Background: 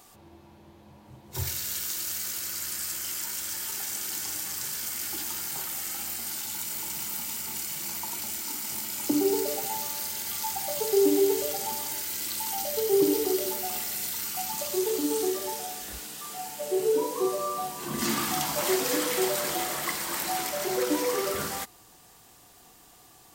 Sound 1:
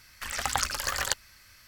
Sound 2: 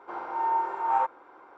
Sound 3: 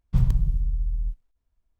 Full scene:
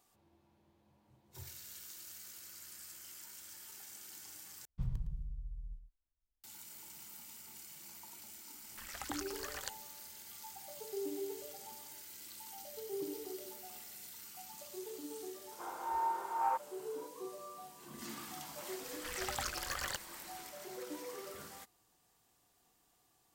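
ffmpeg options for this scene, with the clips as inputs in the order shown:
ffmpeg -i bed.wav -i cue0.wav -i cue1.wav -i cue2.wav -filter_complex "[1:a]asplit=2[link_01][link_02];[0:a]volume=-18.5dB[link_03];[3:a]aecho=1:1:111:0.237[link_04];[link_02]asoftclip=type=tanh:threshold=-19.5dB[link_05];[link_03]asplit=2[link_06][link_07];[link_06]atrim=end=4.654[link_08];[link_04]atrim=end=1.79,asetpts=PTS-STARTPTS,volume=-17.5dB[link_09];[link_07]atrim=start=6.436[link_10];[link_01]atrim=end=1.67,asetpts=PTS-STARTPTS,volume=-15.5dB,afade=type=in:duration=0.004:curve=hsin,afade=type=out:start_time=1.666:duration=0.004:curve=hsin,adelay=8560[link_11];[2:a]atrim=end=1.57,asetpts=PTS-STARTPTS,volume=-8.5dB,afade=type=in:duration=0.004:curve=hsin,afade=type=out:start_time=1.566:duration=0.004:curve=hsin,adelay=15510[link_12];[link_05]atrim=end=1.67,asetpts=PTS-STARTPTS,volume=-8.5dB,afade=type=in:duration=0.004:curve=hsin,afade=type=out:start_time=1.666:duration=0.004:curve=hsin,adelay=18830[link_13];[link_08][link_09]acrossfade=duration=0.004:curve1=hsin:curve2=hsin[link_14];[link_14][link_10]acrossfade=duration=0.004:curve1=hsin:curve2=hsin[link_15];[link_15][link_11][link_12][link_13]amix=inputs=4:normalize=0" out.wav

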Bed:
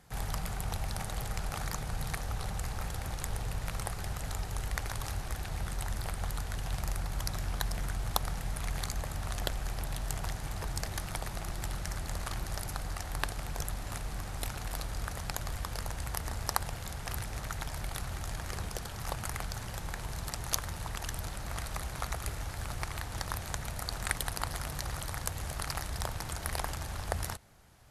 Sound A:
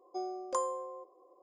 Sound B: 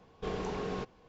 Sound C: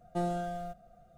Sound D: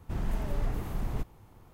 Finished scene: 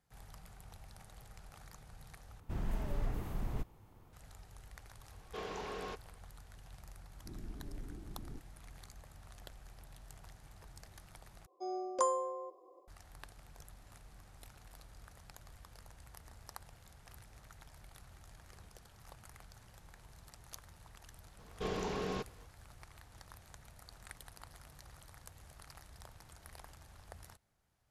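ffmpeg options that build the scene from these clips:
ffmpeg -i bed.wav -i cue0.wav -i cue1.wav -i cue2.wav -i cue3.wav -filter_complex "[4:a]asplit=2[link_01][link_02];[2:a]asplit=2[link_03][link_04];[0:a]volume=-19dB[link_05];[link_03]highpass=frequency=660:poles=1[link_06];[link_02]lowpass=frequency=320:width_type=q:width=3.1[link_07];[1:a]dynaudnorm=framelen=150:gausssize=3:maxgain=10dB[link_08];[link_04]highshelf=frequency=3300:gain=6.5[link_09];[link_05]asplit=3[link_10][link_11][link_12];[link_10]atrim=end=2.404[link_13];[link_01]atrim=end=1.73,asetpts=PTS-STARTPTS,volume=-5.5dB[link_14];[link_11]atrim=start=4.126:end=11.464[link_15];[link_08]atrim=end=1.42,asetpts=PTS-STARTPTS,volume=-8.5dB[link_16];[link_12]atrim=start=12.876[link_17];[link_06]atrim=end=1.08,asetpts=PTS-STARTPTS,volume=-2dB,afade=type=in:duration=0.004:curve=hsin,afade=type=out:start_time=1.076:duration=0.004:curve=hsin,adelay=5110[link_18];[link_07]atrim=end=1.73,asetpts=PTS-STARTPTS,volume=-17dB,afade=type=in:duration=0.004:curve=hsin,afade=type=out:start_time=1.726:duration=0.004:curve=hsin,adelay=7160[link_19];[link_09]atrim=end=1.08,asetpts=PTS-STARTPTS,volume=-2dB,afade=type=in:duration=0.004:curve=hsin,afade=type=out:start_time=1.076:duration=0.004:curve=hsin,adelay=21380[link_20];[link_13][link_14]acrossfade=duration=0.004:curve1=hsin:curve2=hsin[link_21];[link_21][link_15]acrossfade=duration=0.004:curve1=hsin:curve2=hsin[link_22];[link_22][link_16]acrossfade=duration=0.004:curve1=hsin:curve2=hsin[link_23];[link_23][link_17]acrossfade=duration=0.004:curve1=hsin:curve2=hsin[link_24];[link_24][link_18][link_19][link_20]amix=inputs=4:normalize=0" out.wav

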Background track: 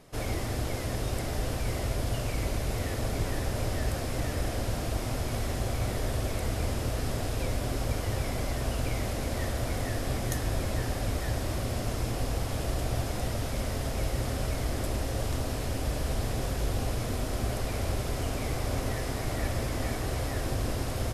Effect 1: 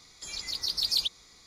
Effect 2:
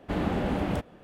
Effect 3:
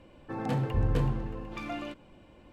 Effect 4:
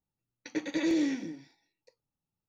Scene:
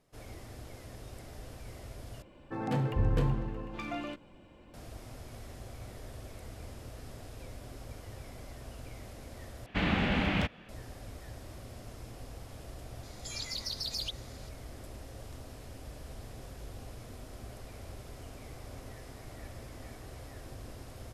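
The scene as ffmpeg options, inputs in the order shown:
ffmpeg -i bed.wav -i cue0.wav -i cue1.wav -i cue2.wav -filter_complex "[0:a]volume=-15.5dB[link_01];[2:a]firequalizer=gain_entry='entry(200,0);entry(350,-6);entry(2300,11);entry(9000,-6)':delay=0.05:min_phase=1[link_02];[1:a]acompressor=threshold=-31dB:ratio=6:attack=3.2:release=140:knee=1:detection=peak[link_03];[link_01]asplit=3[link_04][link_05][link_06];[link_04]atrim=end=2.224[link_07];[3:a]atrim=end=2.52,asetpts=PTS-STARTPTS,volume=-1dB[link_08];[link_05]atrim=start=4.736:end=9.664[link_09];[link_02]atrim=end=1.03,asetpts=PTS-STARTPTS,volume=-0.5dB[link_10];[link_06]atrim=start=10.686[link_11];[link_03]atrim=end=1.46,asetpts=PTS-STARTPTS,volume=-2dB,afade=type=in:duration=0.004:curve=hsin,afade=type=out:start_time=1.456:duration=0.004:curve=hsin,adelay=13030[link_12];[link_07][link_08]acrossfade=duration=0.004:curve1=hsin:curve2=hsin[link_13];[link_13][link_09]acrossfade=duration=0.004:curve1=hsin:curve2=hsin[link_14];[link_14][link_10]acrossfade=duration=0.004:curve1=hsin:curve2=hsin[link_15];[link_15][link_11]acrossfade=duration=0.004:curve1=hsin:curve2=hsin[link_16];[link_16][link_12]amix=inputs=2:normalize=0" out.wav

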